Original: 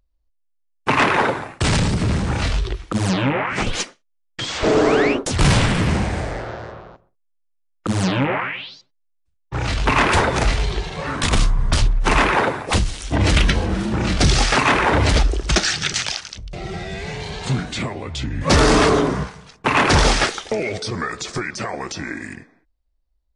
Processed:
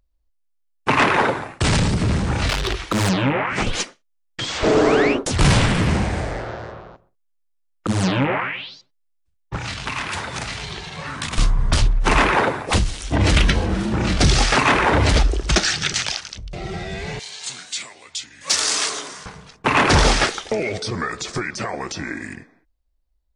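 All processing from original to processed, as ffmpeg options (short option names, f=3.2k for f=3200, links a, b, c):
-filter_complex "[0:a]asettb=1/sr,asplit=3[a][b][c];[a]atrim=end=2.494[d];[b]atrim=start=2.49:end=3.09,asetpts=PTS-STARTPTS,afade=t=in:d=0.004:c=qsin,afade=t=out:st=0.596:d=0.004:c=qsin,volume=20dB,asoftclip=hard,volume=-20dB,asubboost=boost=6:cutoff=200,asplit=2[e][f];[f]highpass=f=720:p=1,volume=21dB,asoftclip=type=tanh:threshold=-11.5dB[g];[e][g]amix=inputs=2:normalize=0,lowpass=f=6.9k:p=1,volume=-6dB[h];[c]atrim=start=3.086[i];[d][h]acrossfade=d=0.004:c1=hsin:c2=qsin[j];[j][i]acrossfade=d=0.004:c1=qsin:c2=hsin,asettb=1/sr,asplit=3[k][l][m];[k]atrim=end=9.564[n];[l]atrim=start=9.56:end=11.38,asetpts=PTS-STARTPTS,afade=t=in:d=0.004:c=qsin,afade=t=out:st=1.816:d=0.004:c=qsin,highpass=86,equalizer=f=420:t=o:w=1.8:g=-9,acrossover=split=110|2900[o][p][q];[o]acompressor=threshold=-40dB:ratio=4[r];[p]acompressor=threshold=-28dB:ratio=4[s];[q]acompressor=threshold=-31dB:ratio=4[t];[r][s][t]amix=inputs=3:normalize=0[u];[m]atrim=start=11.376[v];[n][u]acrossfade=d=0.004:c1=hsin:c2=qsin[w];[w][v]acrossfade=d=0.004:c1=qsin:c2=hsin,asettb=1/sr,asplit=3[x][y][z];[x]atrim=end=17.194[aa];[y]atrim=start=17.19:end=19.26,asetpts=PTS-STARTPTS,afade=t=in:d=0.004:c=qsin,afade=t=out:st=2.066:d=0.004:c=qsin,bandpass=f=7.5k:t=q:w=1.1,acontrast=87[ab];[z]atrim=start=19.256[ac];[aa][ab]acrossfade=d=0.004:c1=hsin:c2=qsin[ad];[ad][ac]acrossfade=d=0.004:c1=qsin:c2=hsin"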